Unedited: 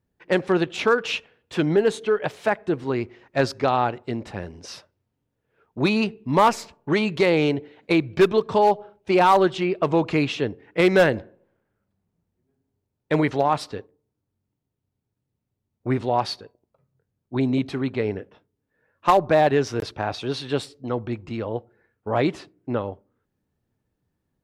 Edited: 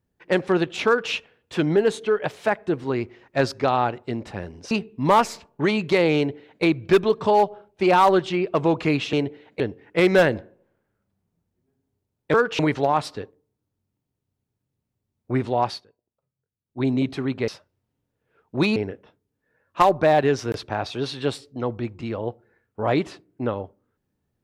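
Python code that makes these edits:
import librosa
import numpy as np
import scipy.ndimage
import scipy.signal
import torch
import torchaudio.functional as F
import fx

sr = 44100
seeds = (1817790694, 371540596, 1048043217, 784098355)

y = fx.edit(x, sr, fx.duplicate(start_s=0.87, length_s=0.25, to_s=13.15),
    fx.move(start_s=4.71, length_s=1.28, to_s=18.04),
    fx.duplicate(start_s=7.44, length_s=0.47, to_s=10.41),
    fx.fade_down_up(start_s=16.21, length_s=1.19, db=-14.5, fade_s=0.19), tone=tone)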